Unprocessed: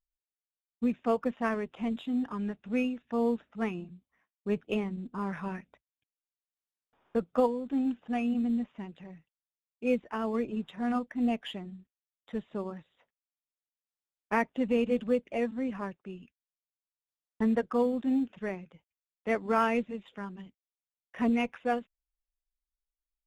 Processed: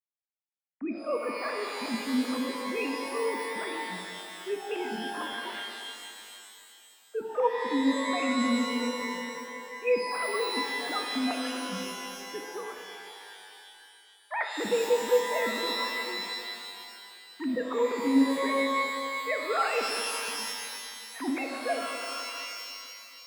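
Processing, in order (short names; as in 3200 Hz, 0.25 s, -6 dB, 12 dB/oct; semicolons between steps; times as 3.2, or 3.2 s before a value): sine-wave speech; bell 270 Hz -4 dB 2.3 oct; shimmer reverb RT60 2.5 s, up +12 st, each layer -2 dB, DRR 2.5 dB; gain +1.5 dB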